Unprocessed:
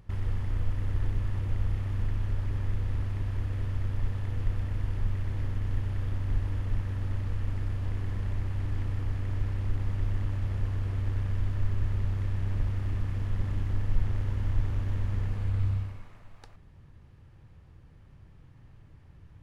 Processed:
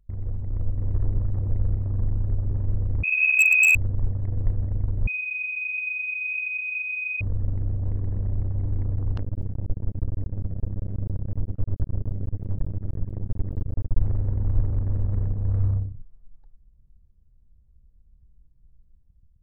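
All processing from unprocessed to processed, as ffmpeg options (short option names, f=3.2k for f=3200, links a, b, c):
-filter_complex "[0:a]asettb=1/sr,asplit=3[a][b][c];[a]atrim=end=1.874[d];[b]atrim=start=1.87:end=2.29,asetpts=PTS-STARTPTS,afade=t=in:d=0.004:c=qsin,afade=t=out:st=0.416:d=0.004:c=qsin,lowpass=f=1.9k:w=0.5412,lowpass=f=1.9k:w=1.3066,aemphasis=mode=production:type=50kf[e];[c]atrim=start=2.286[f];[d][e]acrossfade=d=0.004:c1=hsin:c2=qsin[g];[g][f]acrossfade=d=0.004:c1=qsin:c2=hsin,asettb=1/sr,asplit=3[h][i][j];[h]atrim=end=3.034[k];[i]atrim=start=3.03:end=3.75,asetpts=PTS-STARTPTS,afade=t=in:d=0.004:c=qsin,afade=t=out:st=0.716:d=0.004:c=qsin,asubboost=boost=12:cutoff=150,lowpass=f=2.2k:t=q:w=0.5098,lowpass=f=2.2k:t=q:w=0.6013,lowpass=f=2.2k:t=q:w=0.9,lowpass=f=2.2k:t=q:w=2.563,afreqshift=-2600,aeval=exprs='0.158*(abs(mod(val(0)/0.158+3,4)-2)-1)':c=same[l];[j]atrim=start=3.746[m];[k][l]acrossfade=d=0.004:c1=hsin:c2=qsin[n];[n][m]acrossfade=d=0.004:c1=qsin:c2=hsin,asettb=1/sr,asplit=3[o][p][q];[o]atrim=end=5.074[r];[p]atrim=start=5.07:end=7.21,asetpts=PTS-STARTPTS,afade=t=in:d=0.004:c=qsin,afade=t=out:st=2.136:d=0.004:c=qsin,highpass=87,lowpass=f=2.2k:t=q:w=0.5098,lowpass=f=2.2k:t=q:w=0.6013,lowpass=f=2.2k:t=q:w=0.9,lowpass=f=2.2k:t=q:w=2.563,afreqshift=-2600[s];[q]atrim=start=7.206[t];[r][s]acrossfade=d=0.004:c1=hsin:c2=qsin[u];[u][t]acrossfade=d=0.004:c1=qsin:c2=hsin,asettb=1/sr,asplit=3[v][w][x];[v]atrim=end=9.174[y];[w]atrim=start=9.17:end=14,asetpts=PTS-STARTPTS,afade=t=in:d=0.004:c=qsin,afade=t=out:st=4.826:d=0.004:c=qsin,aeval=exprs='max(val(0),0)':c=same,acompressor=mode=upward:threshold=-28dB:ratio=2.5:attack=3.2:release=140:knee=2.83:detection=peak[z];[x]atrim=start=13.996[aa];[y][z]acrossfade=d=0.004:c1=hsin:c2=qsin[ab];[ab][aa]acrossfade=d=0.004:c1=qsin:c2=hsin,anlmdn=3.98,equalizer=f=530:w=2.1:g=4,dynaudnorm=f=190:g=7:m=5dB"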